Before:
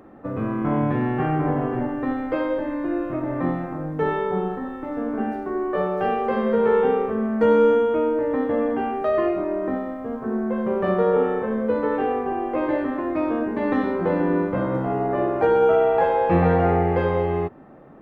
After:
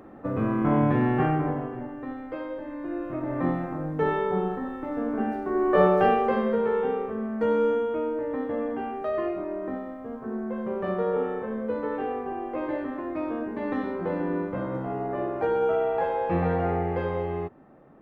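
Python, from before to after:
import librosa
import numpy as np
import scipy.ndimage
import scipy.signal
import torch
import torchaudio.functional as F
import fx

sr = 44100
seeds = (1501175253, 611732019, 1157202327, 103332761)

y = fx.gain(x, sr, db=fx.line((1.23, 0.0), (1.76, -10.5), (2.6, -10.5), (3.46, -2.0), (5.42, -2.0), (5.85, 5.5), (6.71, -7.0)))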